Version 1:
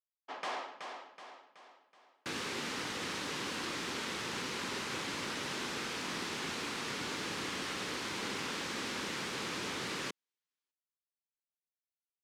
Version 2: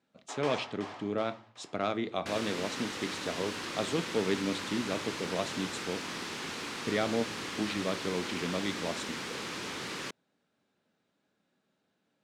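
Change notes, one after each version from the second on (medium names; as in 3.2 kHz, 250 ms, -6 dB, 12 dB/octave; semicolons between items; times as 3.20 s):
speech: unmuted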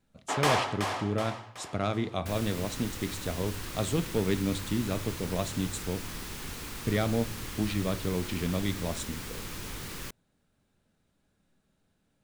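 first sound +12.0 dB; second sound -5.0 dB; master: remove band-pass 240–5600 Hz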